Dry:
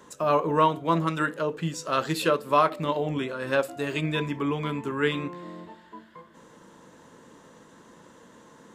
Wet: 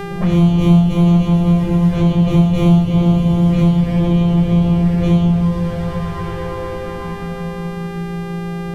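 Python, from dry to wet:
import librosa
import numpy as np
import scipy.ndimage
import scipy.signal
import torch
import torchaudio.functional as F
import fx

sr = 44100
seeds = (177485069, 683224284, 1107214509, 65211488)

p1 = np.r_[np.sort(x[:len(x) // 256 * 256].reshape(-1, 256), axis=1).ravel(), x[len(x) // 256 * 256:]]
p2 = fx.env_lowpass(p1, sr, base_hz=450.0, full_db=-18.5)
p3 = p2 + fx.echo_swell(p2, sr, ms=120, loudest=5, wet_db=-15.5, dry=0)
p4 = fx.env_flanger(p3, sr, rest_ms=6.8, full_db=-23.5)
p5 = fx.room_shoebox(p4, sr, seeds[0], volume_m3=790.0, walls='mixed', distance_m=5.9)
p6 = fx.dmg_buzz(p5, sr, base_hz=400.0, harmonics=35, level_db=-38.0, tilt_db=-4, odd_only=False)
p7 = fx.bass_treble(p6, sr, bass_db=9, treble_db=-9)
p8 = fx.band_squash(p7, sr, depth_pct=70)
y = p8 * 10.0 ** (-6.5 / 20.0)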